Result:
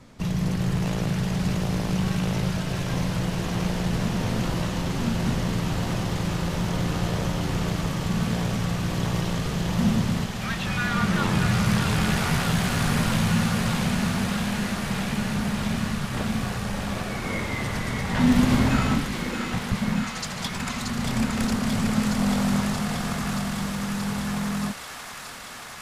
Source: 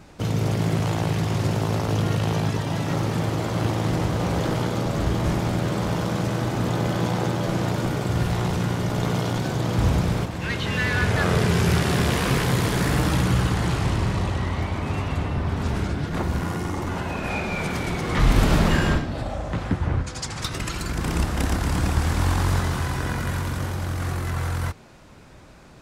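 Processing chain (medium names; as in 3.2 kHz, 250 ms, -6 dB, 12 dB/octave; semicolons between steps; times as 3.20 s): feedback echo behind a high-pass 628 ms, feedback 84%, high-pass 1.6 kHz, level -4.5 dB; frequency shift -290 Hz; trim -2 dB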